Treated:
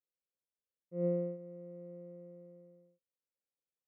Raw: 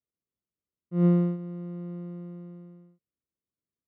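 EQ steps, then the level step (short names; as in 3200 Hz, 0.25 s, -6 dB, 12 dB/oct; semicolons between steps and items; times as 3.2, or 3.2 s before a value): vocal tract filter e; Butterworth band-stop 1700 Hz, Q 2.8; +3.0 dB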